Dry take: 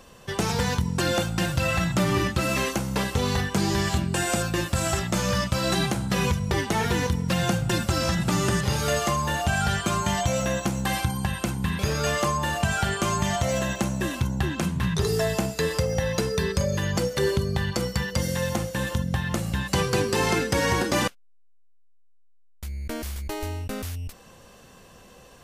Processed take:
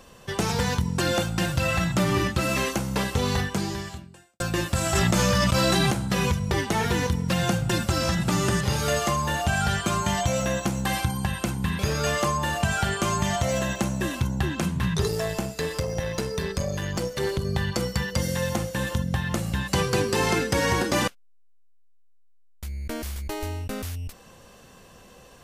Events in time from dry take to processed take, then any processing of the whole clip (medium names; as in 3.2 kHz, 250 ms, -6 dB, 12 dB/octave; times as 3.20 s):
3.42–4.40 s: fade out quadratic
4.95–5.91 s: level flattener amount 100%
15.08–17.45 s: valve stage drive 15 dB, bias 0.65